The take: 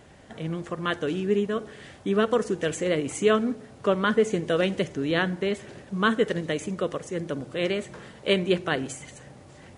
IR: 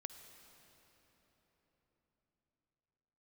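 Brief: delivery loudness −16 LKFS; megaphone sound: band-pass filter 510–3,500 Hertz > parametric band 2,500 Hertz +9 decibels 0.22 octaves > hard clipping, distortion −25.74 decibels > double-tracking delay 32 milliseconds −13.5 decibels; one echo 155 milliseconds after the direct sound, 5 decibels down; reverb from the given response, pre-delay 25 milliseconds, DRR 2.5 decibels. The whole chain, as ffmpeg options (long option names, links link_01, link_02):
-filter_complex "[0:a]aecho=1:1:155:0.562,asplit=2[link_01][link_02];[1:a]atrim=start_sample=2205,adelay=25[link_03];[link_02][link_03]afir=irnorm=-1:irlink=0,volume=1.5dB[link_04];[link_01][link_04]amix=inputs=2:normalize=0,highpass=510,lowpass=3500,equalizer=frequency=2500:width_type=o:width=0.22:gain=9,asoftclip=type=hard:threshold=-13.5dB,asplit=2[link_05][link_06];[link_06]adelay=32,volume=-13.5dB[link_07];[link_05][link_07]amix=inputs=2:normalize=0,volume=11dB"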